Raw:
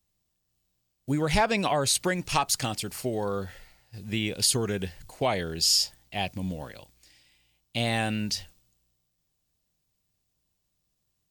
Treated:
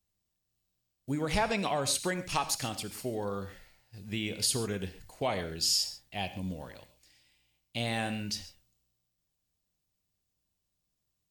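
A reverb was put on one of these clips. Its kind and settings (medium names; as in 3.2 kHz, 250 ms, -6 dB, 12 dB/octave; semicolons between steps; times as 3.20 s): gated-style reverb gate 160 ms flat, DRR 10.5 dB; trim -5.5 dB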